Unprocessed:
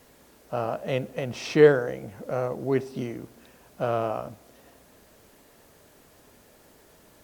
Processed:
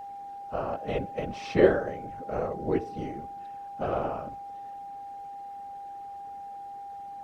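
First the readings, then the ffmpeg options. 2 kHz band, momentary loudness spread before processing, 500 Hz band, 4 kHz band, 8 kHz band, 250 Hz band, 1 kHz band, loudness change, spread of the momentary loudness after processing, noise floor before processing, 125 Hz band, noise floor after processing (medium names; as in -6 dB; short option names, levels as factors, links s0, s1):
-4.5 dB, 17 LU, -4.0 dB, -6.5 dB, no reading, -1.5 dB, +3.0 dB, -6.0 dB, 16 LU, -57 dBFS, -5.0 dB, -41 dBFS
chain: -af "aemphasis=mode=reproduction:type=50kf,afftfilt=real='hypot(re,im)*cos(2*PI*random(0))':imag='hypot(re,im)*sin(2*PI*random(1))':win_size=512:overlap=0.75,aeval=exprs='val(0)+0.00891*sin(2*PI*800*n/s)':c=same,volume=1.41"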